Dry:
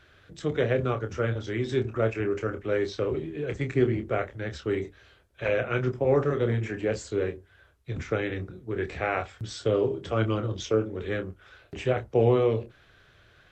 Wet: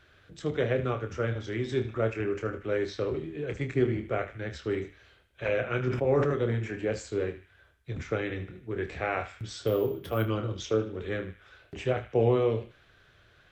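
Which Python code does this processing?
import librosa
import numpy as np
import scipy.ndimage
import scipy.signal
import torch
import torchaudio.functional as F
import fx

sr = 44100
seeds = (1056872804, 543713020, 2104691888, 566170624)

y = fx.resample_bad(x, sr, factor=3, down='filtered', up='hold', at=(9.67, 10.28))
y = fx.echo_banded(y, sr, ms=76, feedback_pct=52, hz=2500.0, wet_db=-11.0)
y = fx.sustainer(y, sr, db_per_s=49.0, at=(5.87, 6.36))
y = y * 10.0 ** (-2.5 / 20.0)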